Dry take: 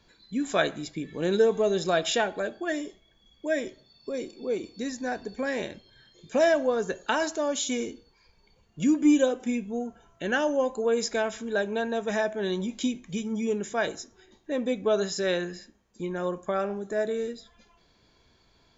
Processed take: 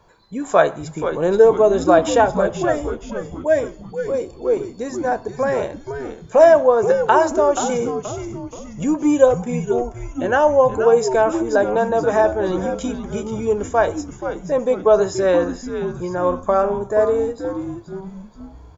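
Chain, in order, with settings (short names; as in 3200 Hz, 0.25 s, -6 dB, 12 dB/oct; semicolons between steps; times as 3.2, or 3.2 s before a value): ten-band EQ 125 Hz +4 dB, 250 Hz -7 dB, 500 Hz +5 dB, 1000 Hz +10 dB, 2000 Hz -5 dB, 4000 Hz -10 dB; frequency-shifting echo 0.478 s, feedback 47%, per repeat -130 Hz, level -9 dB; gain +6 dB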